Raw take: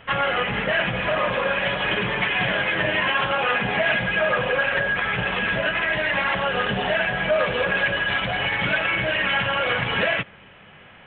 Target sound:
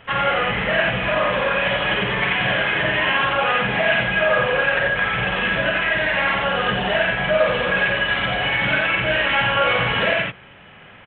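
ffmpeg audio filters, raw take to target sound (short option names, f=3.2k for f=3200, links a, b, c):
-filter_complex "[0:a]asettb=1/sr,asplit=3[a][b][c];[a]atrim=end=9.034[d];[b]atrim=start=9.03:end=9.93,asetpts=PTS-STARTPTS,afade=t=in:d=0.004:c=qsin,afade=t=out:st=0.896:d=0.004:c=qsin,asplit=2[e][f];[f]adelay=18,volume=-6dB[g];[e][g]amix=inputs=2:normalize=0,atrim=end_sample=39690[h];[c]atrim=start=9.926[i];[d][h]acrossfade=d=0.004:c1=hsin:c2=qsin[j];[j][i]acrossfade=d=0.004:c1=qsin:c2=hsin,aecho=1:1:49.56|87.46:0.631|0.708"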